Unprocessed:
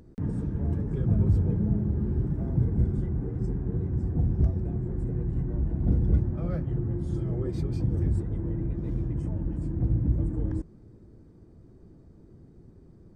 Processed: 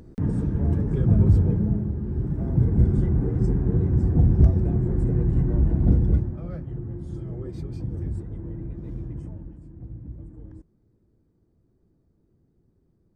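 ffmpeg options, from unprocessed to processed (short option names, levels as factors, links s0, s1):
-af "volume=5.62,afade=t=out:st=1.35:d=0.66:silence=0.421697,afade=t=in:st=2.01:d=1.06:silence=0.334965,afade=t=out:st=5.71:d=0.7:silence=0.266073,afade=t=out:st=9.16:d=0.44:silence=0.334965"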